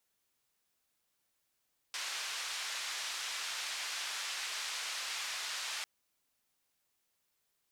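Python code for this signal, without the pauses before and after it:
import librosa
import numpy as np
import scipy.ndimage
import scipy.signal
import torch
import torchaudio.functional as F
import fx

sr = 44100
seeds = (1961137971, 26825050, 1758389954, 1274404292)

y = fx.band_noise(sr, seeds[0], length_s=3.9, low_hz=1100.0, high_hz=5500.0, level_db=-39.5)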